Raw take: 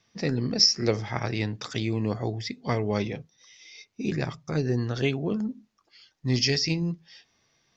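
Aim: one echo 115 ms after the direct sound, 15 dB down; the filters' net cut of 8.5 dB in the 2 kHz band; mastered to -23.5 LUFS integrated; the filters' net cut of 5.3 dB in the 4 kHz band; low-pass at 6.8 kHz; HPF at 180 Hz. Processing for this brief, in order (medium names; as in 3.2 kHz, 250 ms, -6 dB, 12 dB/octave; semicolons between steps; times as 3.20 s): high-pass 180 Hz; low-pass 6.8 kHz; peaking EQ 2 kHz -9 dB; peaking EQ 4 kHz -5 dB; delay 115 ms -15 dB; trim +7 dB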